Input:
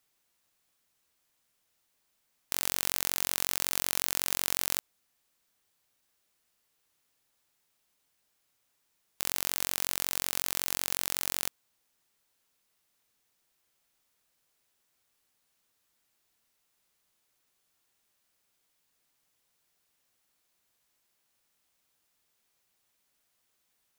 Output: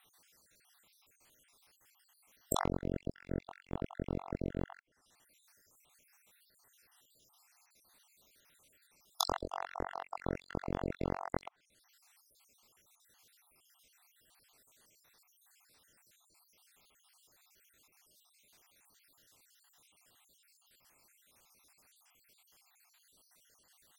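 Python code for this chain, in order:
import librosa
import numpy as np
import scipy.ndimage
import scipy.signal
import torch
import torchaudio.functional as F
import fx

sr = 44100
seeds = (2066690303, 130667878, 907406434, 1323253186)

y = fx.spec_dropout(x, sr, seeds[0], share_pct=66)
y = fx.env_lowpass_down(y, sr, base_hz=360.0, full_db=-33.0)
y = fx.peak_eq(y, sr, hz=160.0, db=-12.5, octaves=0.92, at=(9.23, 9.84))
y = F.gain(torch.from_numpy(y), 13.5).numpy()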